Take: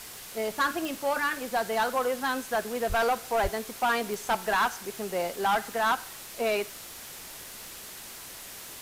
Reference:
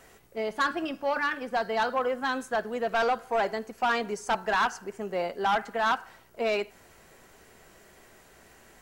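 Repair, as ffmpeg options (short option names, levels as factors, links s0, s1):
-filter_complex "[0:a]adeclick=t=4,asplit=3[s0][s1][s2];[s0]afade=t=out:st=2.88:d=0.02[s3];[s1]highpass=f=140:w=0.5412,highpass=f=140:w=1.3066,afade=t=in:st=2.88:d=0.02,afade=t=out:st=3:d=0.02[s4];[s2]afade=t=in:st=3:d=0.02[s5];[s3][s4][s5]amix=inputs=3:normalize=0,asplit=3[s6][s7][s8];[s6]afade=t=out:st=3.42:d=0.02[s9];[s7]highpass=f=140:w=0.5412,highpass=f=140:w=1.3066,afade=t=in:st=3.42:d=0.02,afade=t=out:st=3.54:d=0.02[s10];[s8]afade=t=in:st=3.54:d=0.02[s11];[s9][s10][s11]amix=inputs=3:normalize=0,afwtdn=0.0079"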